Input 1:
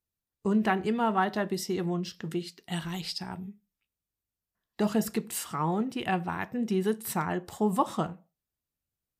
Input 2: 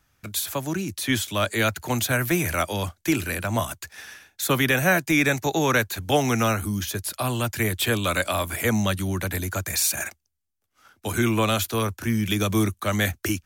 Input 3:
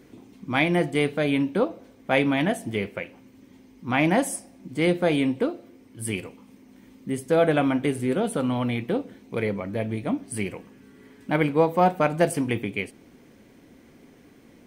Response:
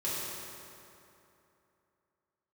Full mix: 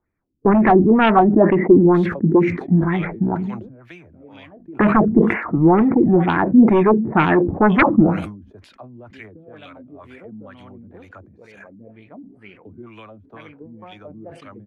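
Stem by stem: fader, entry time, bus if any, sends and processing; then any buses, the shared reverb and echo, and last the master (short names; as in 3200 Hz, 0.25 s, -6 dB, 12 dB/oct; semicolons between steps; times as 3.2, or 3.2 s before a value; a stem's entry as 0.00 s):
-0.5 dB, 0.00 s, no bus, no send, steep low-pass 2300 Hz 96 dB/oct; bell 310 Hz +9 dB 0.63 oct; sine folder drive 10 dB, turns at -10 dBFS
-13.5 dB, 1.60 s, bus A, no send, dry
-15.0 dB, 2.05 s, bus A, no send, auto duck -17 dB, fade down 0.40 s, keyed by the first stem
bus A: 0.0 dB, low shelf 130 Hz -6 dB; compressor 6:1, threshold -39 dBFS, peak gain reduction 10 dB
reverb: off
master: LFO low-pass sine 2.1 Hz 220–3100 Hz; sustainer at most 80 dB/s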